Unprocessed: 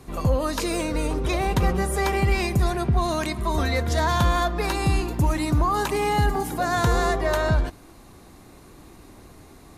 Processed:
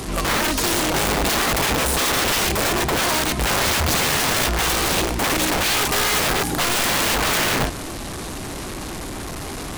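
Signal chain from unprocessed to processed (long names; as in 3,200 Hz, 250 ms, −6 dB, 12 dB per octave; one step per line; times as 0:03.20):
linear delta modulator 64 kbit/s, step −30.5 dBFS
wrap-around overflow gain 21.5 dB
level +6.5 dB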